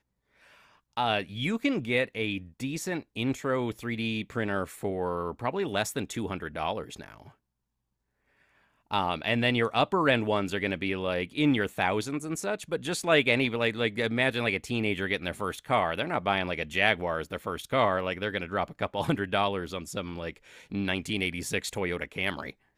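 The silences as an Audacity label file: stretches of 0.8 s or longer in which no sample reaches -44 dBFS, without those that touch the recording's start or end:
7.290000	8.910000	silence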